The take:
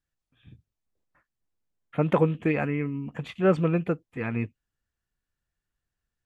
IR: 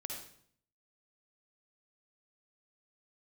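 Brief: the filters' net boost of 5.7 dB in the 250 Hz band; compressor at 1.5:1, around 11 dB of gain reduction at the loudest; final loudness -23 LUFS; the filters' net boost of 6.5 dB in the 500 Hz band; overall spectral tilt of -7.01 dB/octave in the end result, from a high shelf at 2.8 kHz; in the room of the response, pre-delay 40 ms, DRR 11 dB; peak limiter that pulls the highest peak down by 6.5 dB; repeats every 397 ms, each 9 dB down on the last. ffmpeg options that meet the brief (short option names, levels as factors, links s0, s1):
-filter_complex "[0:a]equalizer=f=250:t=o:g=6.5,equalizer=f=500:t=o:g=6,highshelf=f=2800:g=-6.5,acompressor=threshold=0.00794:ratio=1.5,alimiter=limit=0.0891:level=0:latency=1,aecho=1:1:397|794|1191|1588:0.355|0.124|0.0435|0.0152,asplit=2[s0][s1];[1:a]atrim=start_sample=2205,adelay=40[s2];[s1][s2]afir=irnorm=-1:irlink=0,volume=0.316[s3];[s0][s3]amix=inputs=2:normalize=0,volume=3.16"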